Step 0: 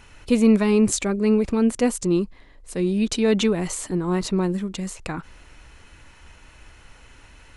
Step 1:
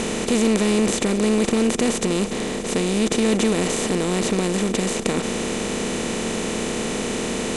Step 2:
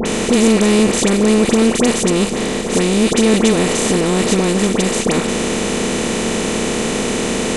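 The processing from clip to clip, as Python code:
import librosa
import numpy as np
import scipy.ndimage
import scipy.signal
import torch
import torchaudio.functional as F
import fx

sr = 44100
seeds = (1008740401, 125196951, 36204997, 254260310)

y1 = fx.bin_compress(x, sr, power=0.2)
y1 = y1 * 10.0 ** (-6.0 / 20.0)
y2 = fx.dispersion(y1, sr, late='highs', ms=57.0, hz=1600.0)
y2 = y2 * 10.0 ** (6.5 / 20.0)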